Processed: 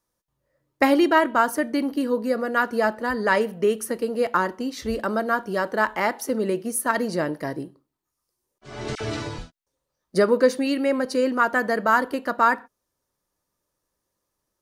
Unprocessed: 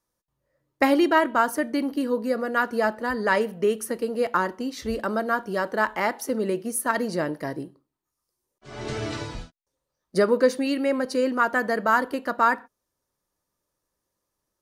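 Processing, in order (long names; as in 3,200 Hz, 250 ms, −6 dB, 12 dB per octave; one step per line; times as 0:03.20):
0:08.95–0:09.38: all-pass dispersion lows, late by 55 ms, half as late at 1,500 Hz
level +1.5 dB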